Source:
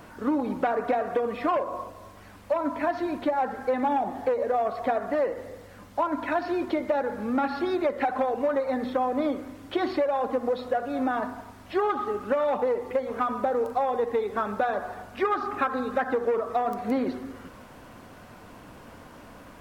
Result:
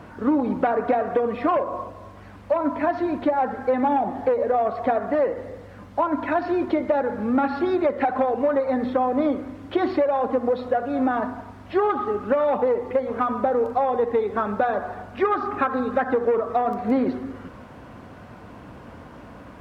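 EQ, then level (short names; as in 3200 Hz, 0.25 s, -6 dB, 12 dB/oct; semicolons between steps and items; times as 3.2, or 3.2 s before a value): HPF 51 Hz; LPF 2300 Hz 6 dB/oct; low shelf 170 Hz +5 dB; +4.0 dB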